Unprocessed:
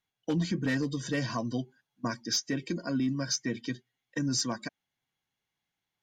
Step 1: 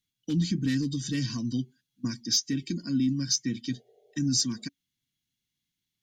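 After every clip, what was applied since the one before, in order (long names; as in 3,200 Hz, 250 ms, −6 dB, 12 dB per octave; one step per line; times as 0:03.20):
healed spectral selection 0:03.75–0:04.60, 370–860 Hz after
drawn EQ curve 280 Hz 0 dB, 620 Hz −25 dB, 3,800 Hz +1 dB
level +3.5 dB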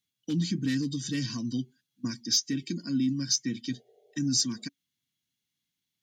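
high-pass filter 140 Hz 6 dB per octave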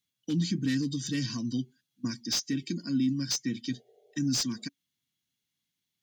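slew-rate limiting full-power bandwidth 260 Hz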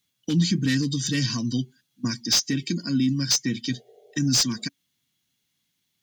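dynamic equaliser 280 Hz, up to −5 dB, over −43 dBFS, Q 1.5
level +9 dB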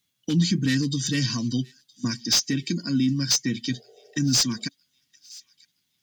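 delay with a high-pass on its return 969 ms, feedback 37%, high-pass 2,700 Hz, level −22 dB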